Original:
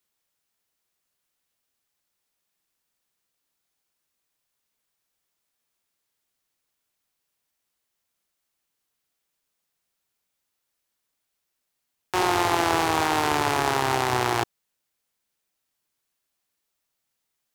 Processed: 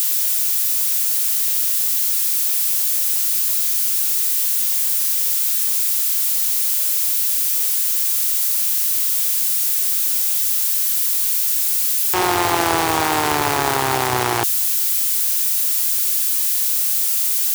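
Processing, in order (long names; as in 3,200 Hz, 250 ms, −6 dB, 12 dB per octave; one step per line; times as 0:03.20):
spike at every zero crossing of −19 dBFS
level +4 dB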